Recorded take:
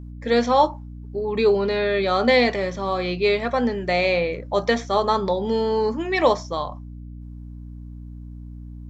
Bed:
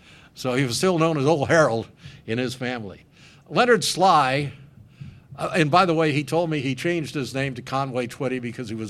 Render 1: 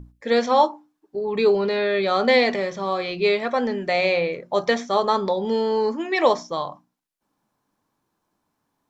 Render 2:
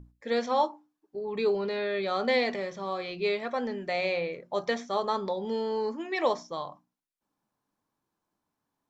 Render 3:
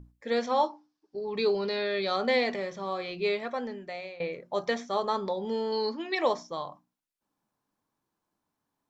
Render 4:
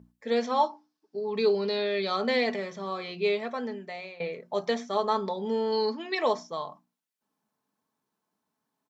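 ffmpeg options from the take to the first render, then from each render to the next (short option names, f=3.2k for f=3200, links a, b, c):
-af "bandreject=f=60:t=h:w=6,bandreject=f=120:t=h:w=6,bandreject=f=180:t=h:w=6,bandreject=f=240:t=h:w=6,bandreject=f=300:t=h:w=6,bandreject=f=360:t=h:w=6"
-af "volume=-8.5dB"
-filter_complex "[0:a]asettb=1/sr,asplit=3[a][b][c];[a]atrim=end=0.664[d];[b]atrim=start=0.66:end=2.16,asetpts=PTS-STARTPTS,afade=t=in:d=0.004:c=qsin,afade=t=out:st=1.496:d=0.004:c=qsin,lowpass=f=5.2k:t=q:w=3.5[e];[c]atrim=start=2.156[f];[d][e]acrossfade=d=0.004:c1=hsin:c2=qsin[g];[g][f]acrossfade=d=0.004:c1=qsin:c2=hsin,asettb=1/sr,asplit=3[h][i][j];[h]atrim=end=5.724[k];[i]atrim=start=5.72:end=6.15,asetpts=PTS-STARTPTS,afade=t=in:d=0.004:c=qsin,afade=t=out:st=0.426:d=0.004:c=qsin,lowpass=f=4.3k:t=q:w=5.2[l];[j]atrim=start=6.146[m];[k][l]acrossfade=d=0.004:c1=hsin:c2=qsin[n];[n][m]acrossfade=d=0.004:c1=qsin:c2=hsin,asplit=2[o][p];[o]atrim=end=4.2,asetpts=PTS-STARTPTS,afade=t=out:st=3.35:d=0.85:silence=0.112202[q];[p]atrim=start=4.2,asetpts=PTS-STARTPTS,afade=t=in:d=0.004:c=hsin:silence=0.112202[r];[q][r]concat=n=2:v=0:a=1"
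-af "highpass=110,aecho=1:1:4.6:0.39"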